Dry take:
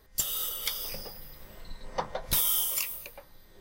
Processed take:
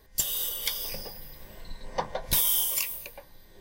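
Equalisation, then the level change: Butterworth band-stop 1300 Hz, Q 6.5; +2.0 dB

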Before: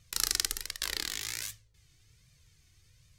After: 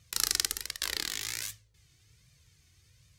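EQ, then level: HPF 48 Hz; +1.0 dB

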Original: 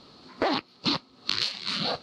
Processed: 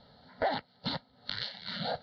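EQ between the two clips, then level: air absorption 290 m; fixed phaser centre 1700 Hz, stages 8; 0.0 dB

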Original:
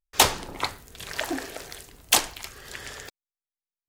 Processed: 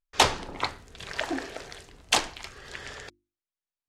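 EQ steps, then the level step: air absorption 77 m; notches 50/100/150/200/250/300/350 Hz; 0.0 dB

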